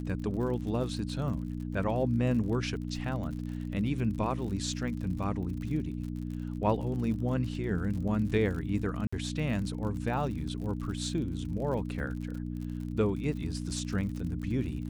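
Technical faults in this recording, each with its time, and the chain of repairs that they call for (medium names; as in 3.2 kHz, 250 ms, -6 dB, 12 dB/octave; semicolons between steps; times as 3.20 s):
crackle 56 per s -39 dBFS
hum 60 Hz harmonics 5 -36 dBFS
9.07–9.12 s: dropout 55 ms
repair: de-click; de-hum 60 Hz, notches 5; interpolate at 9.07 s, 55 ms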